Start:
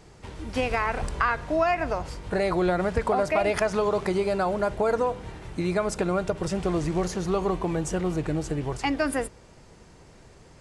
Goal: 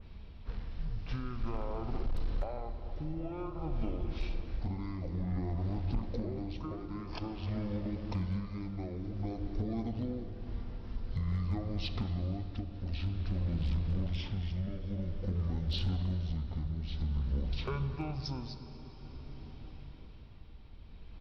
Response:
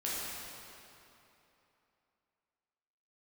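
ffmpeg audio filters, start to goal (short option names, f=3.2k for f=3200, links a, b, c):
-filter_complex "[0:a]asplit=2[a][b];[b]adelay=118,lowpass=f=3.9k:p=1,volume=-18.5dB,asplit=2[c][d];[d]adelay=118,lowpass=f=3.9k:p=1,volume=0.46,asplit=2[e][f];[f]adelay=118,lowpass=f=3.9k:p=1,volume=0.46,asplit=2[g][h];[h]adelay=118,lowpass=f=3.9k:p=1,volume=0.46[i];[a][c][e][g][i]amix=inputs=5:normalize=0,acompressor=threshold=-30dB:ratio=5,bass=f=250:g=13,treble=f=4k:g=3,asplit=2[j][k];[1:a]atrim=start_sample=2205,highshelf=f=2.3k:g=-3.5[l];[k][l]afir=irnorm=-1:irlink=0,volume=-8.5dB[m];[j][m]amix=inputs=2:normalize=0,asetrate=22050,aresample=44100,tremolo=f=0.51:d=0.42,volume=18dB,asoftclip=hard,volume=-18dB,adynamicequalizer=threshold=0.00224:dfrequency=2500:dqfactor=0.7:tfrequency=2500:tqfactor=0.7:attack=5:release=100:ratio=0.375:range=2:mode=boostabove:tftype=highshelf,volume=-8.5dB"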